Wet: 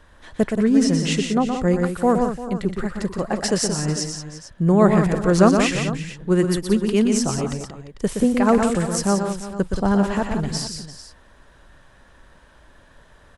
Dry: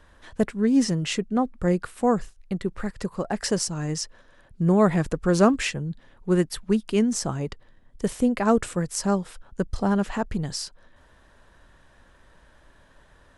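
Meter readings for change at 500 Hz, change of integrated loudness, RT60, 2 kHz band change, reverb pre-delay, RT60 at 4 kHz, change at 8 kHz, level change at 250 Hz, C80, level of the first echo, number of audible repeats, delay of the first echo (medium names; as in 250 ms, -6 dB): +4.5 dB, +4.5 dB, no reverb, +4.5 dB, no reverb, no reverb, +4.5 dB, +4.5 dB, no reverb, -6.0 dB, 4, 120 ms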